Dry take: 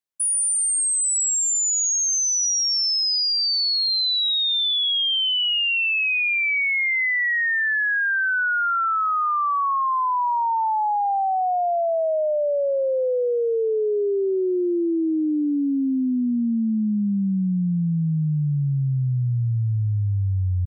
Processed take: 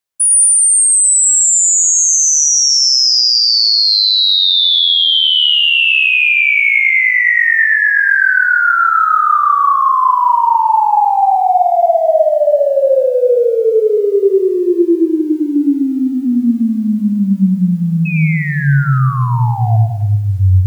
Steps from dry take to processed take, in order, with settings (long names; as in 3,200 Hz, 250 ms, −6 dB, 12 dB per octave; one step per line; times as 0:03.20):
dynamic equaliser 7,900 Hz, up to +8 dB, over −39 dBFS, Q 2.7
0:08.60–0:10.80: high-pass filter 72 Hz 24 dB per octave
parametric band 250 Hz −2.5 dB 1.6 octaves
mains-hum notches 50/100/150/200/250/300 Hz
delay that swaps between a low-pass and a high-pass 127 ms, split 1,900 Hz, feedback 68%, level −5 dB
0:18.05–0:19.77: sound drawn into the spectrogram fall 680–2,600 Hz −32 dBFS
convolution reverb RT60 0.85 s, pre-delay 122 ms, DRR 14.5 dB
boost into a limiter +13.5 dB
feedback echo at a low word length 107 ms, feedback 35%, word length 7 bits, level −4 dB
level −5 dB